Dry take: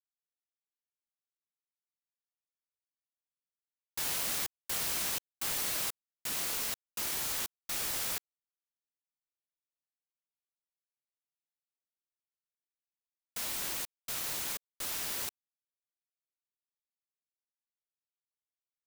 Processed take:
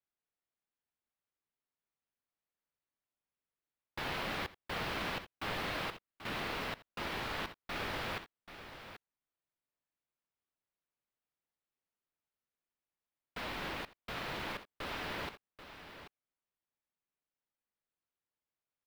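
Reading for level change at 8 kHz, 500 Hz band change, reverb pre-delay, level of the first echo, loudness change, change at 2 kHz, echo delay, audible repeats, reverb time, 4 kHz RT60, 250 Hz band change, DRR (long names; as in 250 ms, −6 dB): −21.0 dB, +5.5 dB, no reverb audible, −19.0 dB, −6.5 dB, +3.0 dB, 82 ms, 2, no reverb audible, no reverb audible, +6.5 dB, no reverb audible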